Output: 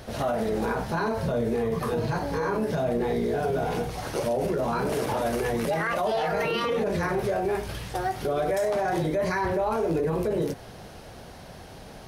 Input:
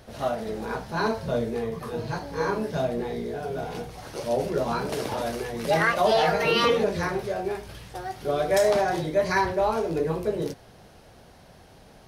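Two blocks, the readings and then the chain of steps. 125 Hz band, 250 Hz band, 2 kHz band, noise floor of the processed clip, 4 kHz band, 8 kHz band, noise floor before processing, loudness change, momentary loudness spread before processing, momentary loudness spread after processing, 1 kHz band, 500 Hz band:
+2.5 dB, +2.0 dB, −3.0 dB, −44 dBFS, −5.5 dB, −1.5 dB, −52 dBFS, −1.0 dB, 12 LU, 10 LU, −1.5 dB, −0.5 dB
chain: in parallel at 0 dB: compressor whose output falls as the input rises −27 dBFS
on the sum: dynamic equaliser 4,500 Hz, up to −6 dB, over −42 dBFS, Q 1
brickwall limiter −18.5 dBFS, peak gain reduction 9.5 dB

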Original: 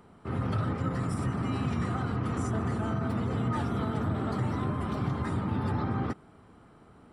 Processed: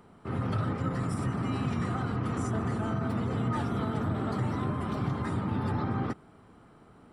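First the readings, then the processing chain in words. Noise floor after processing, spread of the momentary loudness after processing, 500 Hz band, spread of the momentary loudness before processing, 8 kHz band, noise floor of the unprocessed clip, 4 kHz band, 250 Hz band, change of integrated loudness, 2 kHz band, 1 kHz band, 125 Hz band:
−56 dBFS, 1 LU, 0.0 dB, 1 LU, 0.0 dB, −56 dBFS, 0.0 dB, 0.0 dB, −0.5 dB, 0.0 dB, 0.0 dB, −0.5 dB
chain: parametric band 74 Hz −6.5 dB 0.3 octaves

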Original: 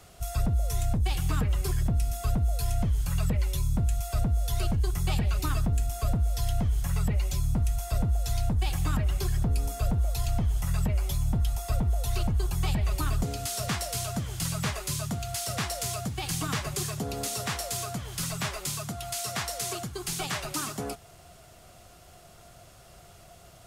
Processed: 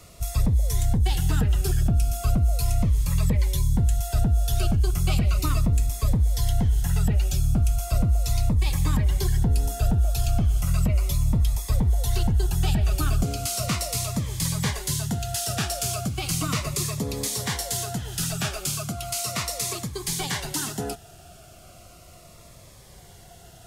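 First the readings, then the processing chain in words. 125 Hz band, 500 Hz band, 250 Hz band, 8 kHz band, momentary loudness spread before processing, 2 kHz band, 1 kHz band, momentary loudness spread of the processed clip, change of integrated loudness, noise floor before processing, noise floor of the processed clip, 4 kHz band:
+5.0 dB, +3.0 dB, +5.0 dB, +5.0 dB, 4 LU, +2.5 dB, +2.0 dB, 5 LU, +5.0 dB, −52 dBFS, −48 dBFS, +4.0 dB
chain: phaser whose notches keep moving one way falling 0.36 Hz
level +5 dB

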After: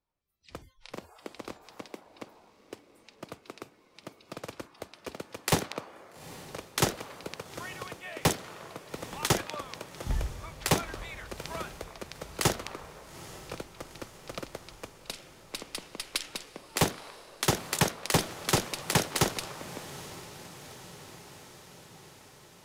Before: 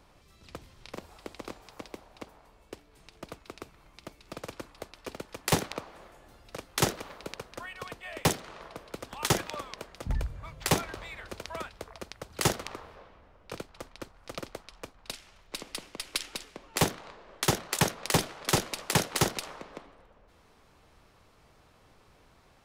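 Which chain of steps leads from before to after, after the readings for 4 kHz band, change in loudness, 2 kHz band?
0.0 dB, −0.5 dB, 0.0 dB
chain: noise reduction from a noise print of the clip's start 29 dB
feedback delay with all-pass diffusion 862 ms, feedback 66%, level −16 dB

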